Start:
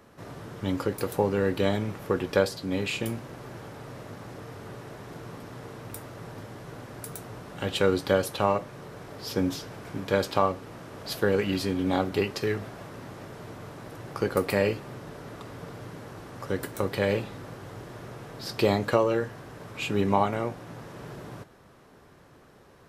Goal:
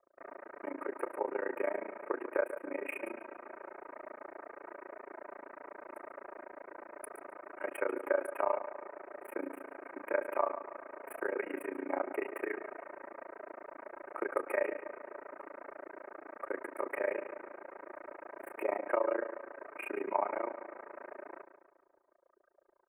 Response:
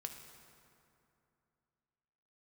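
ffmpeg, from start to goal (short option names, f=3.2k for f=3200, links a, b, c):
-filter_complex "[0:a]acompressor=threshold=-27dB:ratio=2,tremolo=f=28:d=1,adynamicsmooth=sensitivity=6.5:basefreq=5.2k,highpass=f=400:w=0.5412,highpass=f=400:w=1.3066,aecho=1:1:3.2:0.57,anlmdn=0.00158,asuperstop=centerf=4800:order=12:qfactor=0.71,asplit=2[a][b];[b]adelay=141,lowpass=f=4.1k:p=1,volume=-11dB,asplit=2[c][d];[d]adelay=141,lowpass=f=4.1k:p=1,volume=0.5,asplit=2[e][f];[f]adelay=141,lowpass=f=4.1k:p=1,volume=0.5,asplit=2[g][h];[h]adelay=141,lowpass=f=4.1k:p=1,volume=0.5,asplit=2[i][j];[j]adelay=141,lowpass=f=4.1k:p=1,volume=0.5[k];[a][c][e][g][i][k]amix=inputs=6:normalize=0,volume=1dB"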